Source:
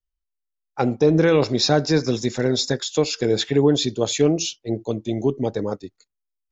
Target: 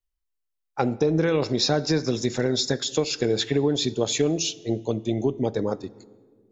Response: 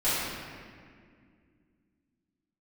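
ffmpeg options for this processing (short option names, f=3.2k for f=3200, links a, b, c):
-filter_complex "[0:a]acompressor=threshold=-19dB:ratio=4,asplit=2[a][b];[1:a]atrim=start_sample=2205,asetrate=57330,aresample=44100[c];[b][c]afir=irnorm=-1:irlink=0,volume=-29.5dB[d];[a][d]amix=inputs=2:normalize=0"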